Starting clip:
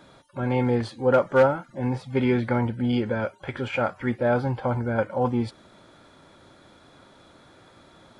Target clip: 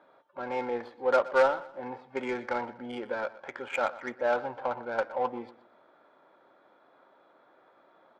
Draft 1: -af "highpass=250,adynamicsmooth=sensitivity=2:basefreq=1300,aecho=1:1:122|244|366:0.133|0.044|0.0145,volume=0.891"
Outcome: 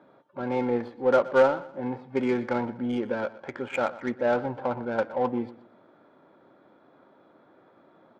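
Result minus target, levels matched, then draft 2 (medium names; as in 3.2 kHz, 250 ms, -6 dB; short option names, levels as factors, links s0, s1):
250 Hz band +7.5 dB
-af "highpass=580,adynamicsmooth=sensitivity=2:basefreq=1300,aecho=1:1:122|244|366:0.133|0.044|0.0145,volume=0.891"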